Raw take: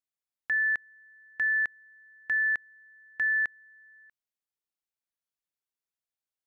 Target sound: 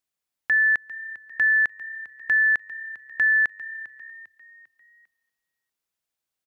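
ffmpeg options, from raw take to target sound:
-filter_complex "[0:a]asplit=5[a][b][c][d][e];[b]adelay=399,afreqshift=33,volume=-17dB[f];[c]adelay=798,afreqshift=66,volume=-24.1dB[g];[d]adelay=1197,afreqshift=99,volume=-31.3dB[h];[e]adelay=1596,afreqshift=132,volume=-38.4dB[i];[a][f][g][h][i]amix=inputs=5:normalize=0,volume=7dB"

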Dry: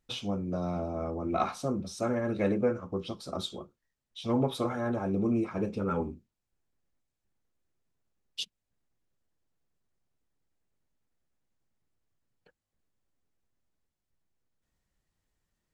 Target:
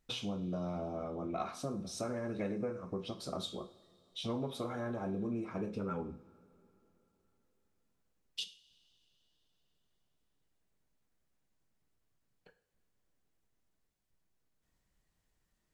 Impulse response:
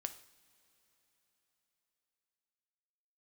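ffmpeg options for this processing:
-filter_complex "[0:a]acompressor=threshold=-39dB:ratio=3[a];[1:a]atrim=start_sample=2205,asetrate=57330,aresample=44100[b];[a][b]afir=irnorm=-1:irlink=0,volume=6dB"

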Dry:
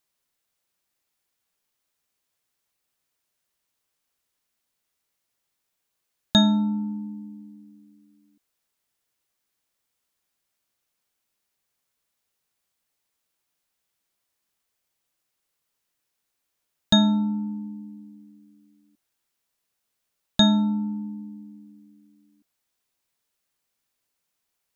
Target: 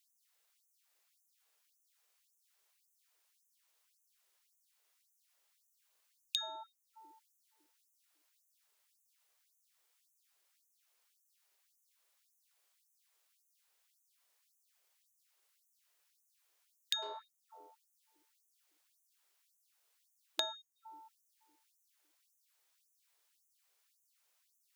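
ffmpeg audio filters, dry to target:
-filter_complex "[0:a]acrossover=split=250[a][b];[a]flanger=delay=9.7:depth=6.3:regen=58:speed=0.75:shape=triangular[c];[b]acompressor=threshold=-36dB:ratio=10[d];[c][d]amix=inputs=2:normalize=0,asettb=1/sr,asplit=3[e][f][g];[e]atrim=end=17.024[h];[f]atrim=start=17.02:end=17.93,asetpts=PTS-STARTPTS,afade=t=in:d=0.004:c=qsin,afade=t=out:st=0.906:d=0.004:c=qsin,aeval=exprs='0.0841*(cos(1*acos(clip(val(0)/0.0841,-1,1)))-cos(1*PI/2))+0.00335*(cos(4*acos(clip(val(0)/0.0841,-1,1)))-cos(4*PI/2))+0.00211*(cos(7*acos(clip(val(0)/0.0841,-1,1)))-cos(7*PI/2))':c=same[i];[g]atrim=start=17.926[j];[h][i]acrossfade=d=0.004:c1=hsin:c2=qsin[k];[k][j]acrossfade=d=0.004:c1=qsin:c2=hsin,afftfilt=real='re*gte(b*sr/1024,320*pow(6000/320,0.5+0.5*sin(2*PI*1.8*pts/sr)))':imag='im*gte(b*sr/1024,320*pow(6000/320,0.5+0.5*sin(2*PI*1.8*pts/sr)))':win_size=1024:overlap=0.75,volume=2.5dB"

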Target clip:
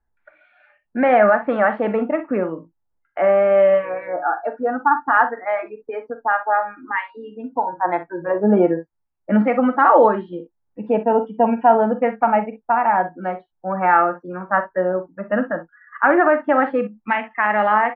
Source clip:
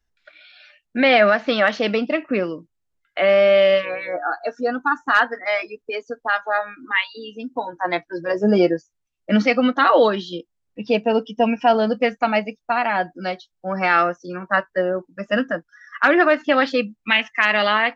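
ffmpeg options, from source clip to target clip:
-filter_complex "[0:a]lowpass=f=1.7k:w=0.5412,lowpass=f=1.7k:w=1.3066,equalizer=f=870:w=4.5:g=9,asplit=2[a][b];[b]aecho=0:1:43|61:0.251|0.188[c];[a][c]amix=inputs=2:normalize=0"

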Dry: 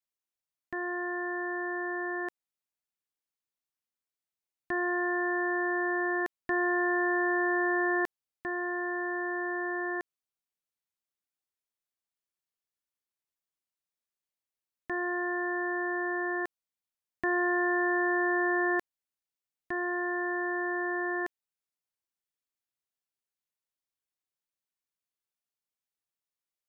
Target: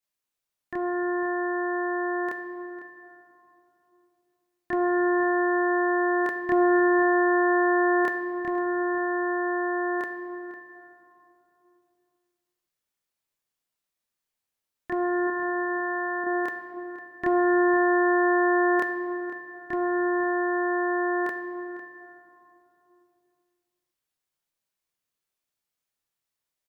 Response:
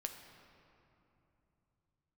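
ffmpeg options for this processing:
-filter_complex "[0:a]asettb=1/sr,asplit=3[a][b][c];[a]atrim=end=15.274[d];[b]atrim=start=15.27:end=16.24,asetpts=PTS-STARTPTS,afade=t=in:d=0.004:c=qsin,afade=t=out:st=0.966:d=0.004:c=qsin,highpass=f=670:p=1[e];[c]atrim=start=16.236[f];[d][e]acrossfade=d=0.004:c1=hsin:c2=qsin[g];[g][f]acrossfade=d=0.004:c1=qsin:c2=hsin,asplit=2[h][i];[i]adelay=501.5,volume=-13dB,highshelf=f=4k:g=-11.3[j];[h][j]amix=inputs=2:normalize=0,asplit=2[k][l];[1:a]atrim=start_sample=2205,asetrate=43218,aresample=44100,adelay=28[m];[l][m]afir=irnorm=-1:irlink=0,volume=5.5dB[n];[k][n]amix=inputs=2:normalize=0,volume=1.5dB"

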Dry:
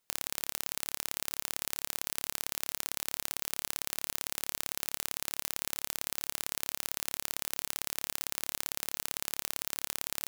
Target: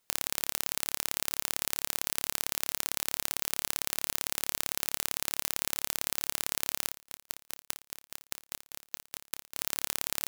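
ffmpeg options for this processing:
-filter_complex "[0:a]asettb=1/sr,asplit=3[a][b][c];[a]atrim=end=6.884[d];[b]atrim=start=6.88:end=9.57,asetpts=PTS-STARTPTS,afade=t=in:d=0.004:c=qsin,afade=t=out:st=2.686:d=0.004:c=qsin,aeval=exprs='val(0)*pow(10,-39*if(lt(mod(4.9*n/s,1),2*abs(4.9)/1000),1-mod(4.9*n/s,1)/(2*abs(4.9)/1000),(mod(4.9*n/s,1)-2*abs(4.9)/1000)/(1-2*abs(4.9)/1000))/20)':c=same[e];[c]atrim=start=9.566[f];[d][e]acrossfade=d=0.004:c1=hsin:c2=qsin[g];[g][f]acrossfade=d=0.004:c1=qsin:c2=hsin,volume=3.5dB"

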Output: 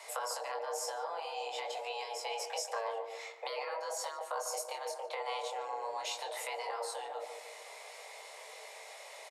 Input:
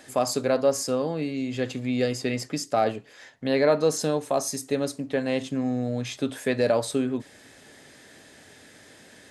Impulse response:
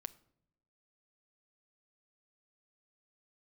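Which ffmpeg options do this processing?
-filter_complex "[0:a]flanger=delay=20:depth=5.8:speed=0.47,acrossover=split=300[a][b];[b]acompressor=threshold=-39dB:ratio=5[c];[a][c]amix=inputs=2:normalize=0,afreqshift=350,afftfilt=real='re*lt(hypot(re,im),0.0891)':imag='im*lt(hypot(re,im),0.0891)':win_size=1024:overlap=0.75,asplit=2[d][e];[e]adelay=147,lowpass=f=860:p=1,volume=-4.5dB,asplit=2[f][g];[g]adelay=147,lowpass=f=860:p=1,volume=0.54,asplit=2[h][i];[i]adelay=147,lowpass=f=860:p=1,volume=0.54,asplit=2[j][k];[k]adelay=147,lowpass=f=860:p=1,volume=0.54,asplit=2[l][m];[m]adelay=147,lowpass=f=860:p=1,volume=0.54,asplit=2[n][o];[o]adelay=147,lowpass=f=860:p=1,volume=0.54,asplit=2[p][q];[q]adelay=147,lowpass=f=860:p=1,volume=0.54[r];[f][h][j][l][n][p][r]amix=inputs=7:normalize=0[s];[d][s]amix=inputs=2:normalize=0,volume=3.5dB"

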